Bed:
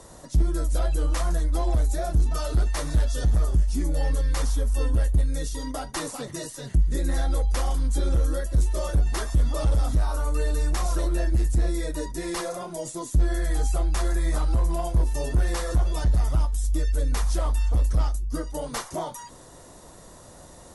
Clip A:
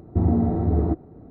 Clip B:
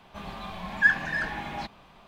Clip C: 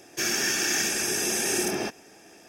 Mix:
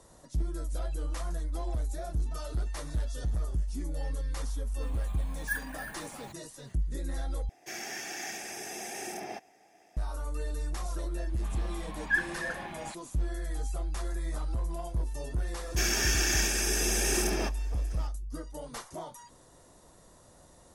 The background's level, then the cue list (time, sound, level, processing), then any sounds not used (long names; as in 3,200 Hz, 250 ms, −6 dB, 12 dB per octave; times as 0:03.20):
bed −10 dB
0:04.66: mix in B −13 dB + bad sample-rate conversion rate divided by 4×, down filtered, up hold
0:07.49: overwrite with C −15 dB + hollow resonant body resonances 740/2,000 Hz, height 14 dB, ringing for 20 ms
0:11.24: mix in B −7 dB + all-pass dispersion highs, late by 48 ms, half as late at 500 Hz
0:15.59: mix in C −3 dB
not used: A